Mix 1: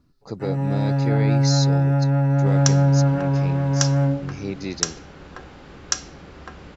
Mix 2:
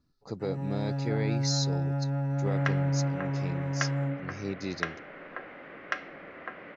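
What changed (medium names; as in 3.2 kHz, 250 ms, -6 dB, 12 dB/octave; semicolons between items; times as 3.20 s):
speech -5.0 dB; first sound -11.0 dB; second sound: add cabinet simulation 320–2500 Hz, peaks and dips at 400 Hz -4 dB, 610 Hz +5 dB, 860 Hz -7 dB, 2 kHz +8 dB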